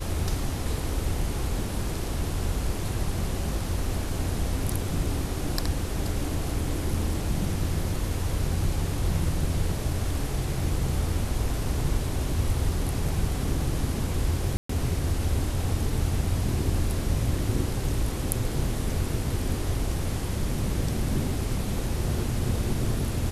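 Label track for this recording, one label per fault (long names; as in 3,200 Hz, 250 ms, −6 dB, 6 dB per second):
14.570000	14.690000	drop-out 124 ms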